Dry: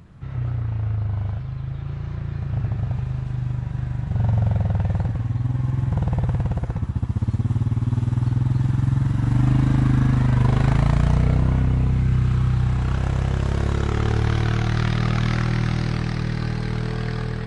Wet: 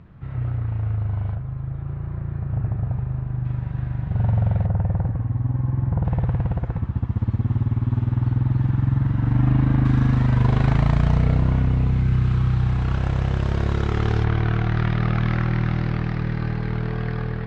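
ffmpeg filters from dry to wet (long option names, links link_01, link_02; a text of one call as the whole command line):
ffmpeg -i in.wav -af "asetnsamples=nb_out_samples=441:pad=0,asendcmd='1.35 lowpass f 1500;3.45 lowpass f 2700;4.66 lowpass f 1400;6.05 lowpass f 2600;9.85 lowpass f 4900;14.24 lowpass f 2500',lowpass=2700" out.wav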